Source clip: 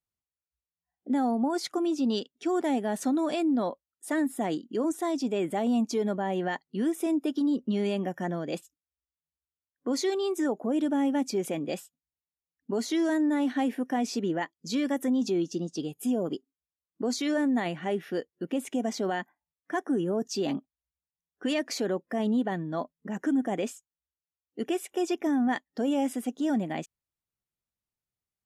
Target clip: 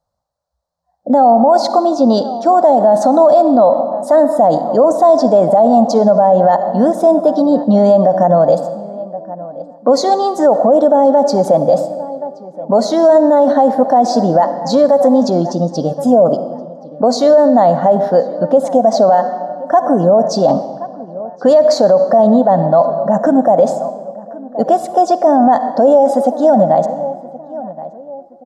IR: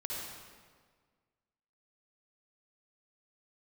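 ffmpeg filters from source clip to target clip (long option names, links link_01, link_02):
-filter_complex "[0:a]firequalizer=gain_entry='entry(170,0);entry(380,-12);entry(560,14);entry(2500,-28);entry(4100,-5);entry(11000,-19)':delay=0.05:min_phase=1,asplit=2[link_01][link_02];[link_02]adelay=1073,lowpass=frequency=1700:poles=1,volume=-20dB,asplit=2[link_03][link_04];[link_04]adelay=1073,lowpass=frequency=1700:poles=1,volume=0.39,asplit=2[link_05][link_06];[link_06]adelay=1073,lowpass=frequency=1700:poles=1,volume=0.39[link_07];[link_01][link_03][link_05][link_07]amix=inputs=4:normalize=0,asplit=2[link_08][link_09];[1:a]atrim=start_sample=2205,asetrate=48510,aresample=44100[link_10];[link_09][link_10]afir=irnorm=-1:irlink=0,volume=-12dB[link_11];[link_08][link_11]amix=inputs=2:normalize=0,alimiter=level_in=19dB:limit=-1dB:release=50:level=0:latency=1,volume=-1dB"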